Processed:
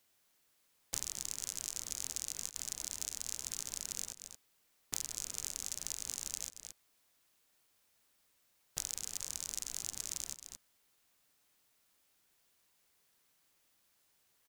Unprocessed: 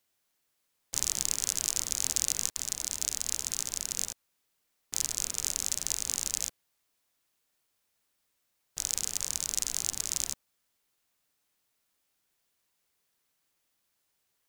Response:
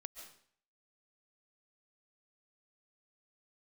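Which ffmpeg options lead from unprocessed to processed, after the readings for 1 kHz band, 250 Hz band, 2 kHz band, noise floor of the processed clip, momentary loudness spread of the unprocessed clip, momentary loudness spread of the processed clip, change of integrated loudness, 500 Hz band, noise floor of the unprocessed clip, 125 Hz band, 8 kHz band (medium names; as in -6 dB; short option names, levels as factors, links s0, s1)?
-8.0 dB, -8.0 dB, -8.5 dB, -74 dBFS, 7 LU, 9 LU, -9.0 dB, -8.0 dB, -78 dBFS, -8.0 dB, -9.0 dB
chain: -filter_complex "[0:a]asplit=2[s0][s1];[s1]aecho=0:1:225:0.141[s2];[s0][s2]amix=inputs=2:normalize=0,acompressor=threshold=0.0126:ratio=6,volume=1.5"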